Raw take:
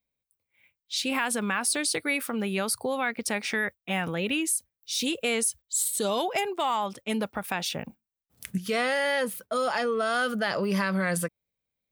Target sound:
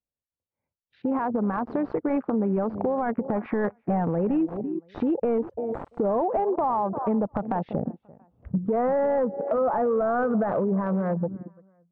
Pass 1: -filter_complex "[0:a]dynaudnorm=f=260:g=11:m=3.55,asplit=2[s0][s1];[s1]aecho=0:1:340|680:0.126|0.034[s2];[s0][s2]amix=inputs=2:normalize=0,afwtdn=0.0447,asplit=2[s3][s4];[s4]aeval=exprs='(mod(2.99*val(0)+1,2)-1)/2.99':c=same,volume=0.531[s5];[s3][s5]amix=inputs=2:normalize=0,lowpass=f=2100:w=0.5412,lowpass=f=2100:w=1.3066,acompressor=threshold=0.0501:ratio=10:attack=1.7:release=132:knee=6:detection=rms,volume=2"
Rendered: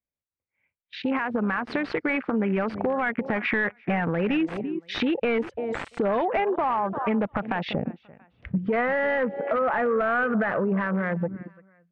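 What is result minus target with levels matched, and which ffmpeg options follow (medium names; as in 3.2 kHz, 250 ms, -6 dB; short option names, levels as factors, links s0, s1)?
2 kHz band +13.0 dB
-filter_complex "[0:a]dynaudnorm=f=260:g=11:m=3.55,asplit=2[s0][s1];[s1]aecho=0:1:340|680:0.126|0.034[s2];[s0][s2]amix=inputs=2:normalize=0,afwtdn=0.0447,asplit=2[s3][s4];[s4]aeval=exprs='(mod(2.99*val(0)+1,2)-1)/2.99':c=same,volume=0.531[s5];[s3][s5]amix=inputs=2:normalize=0,lowpass=f=1000:w=0.5412,lowpass=f=1000:w=1.3066,acompressor=threshold=0.0501:ratio=10:attack=1.7:release=132:knee=6:detection=rms,volume=2"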